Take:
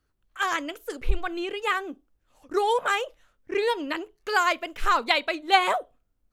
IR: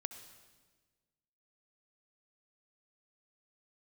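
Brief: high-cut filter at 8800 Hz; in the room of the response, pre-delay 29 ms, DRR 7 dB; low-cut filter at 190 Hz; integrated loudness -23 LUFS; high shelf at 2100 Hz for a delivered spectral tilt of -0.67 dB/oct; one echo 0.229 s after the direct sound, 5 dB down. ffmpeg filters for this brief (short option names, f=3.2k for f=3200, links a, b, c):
-filter_complex "[0:a]highpass=190,lowpass=8.8k,highshelf=f=2.1k:g=3.5,aecho=1:1:229:0.562,asplit=2[a][b];[1:a]atrim=start_sample=2205,adelay=29[c];[b][c]afir=irnorm=-1:irlink=0,volume=-5dB[d];[a][d]amix=inputs=2:normalize=0,volume=0.5dB"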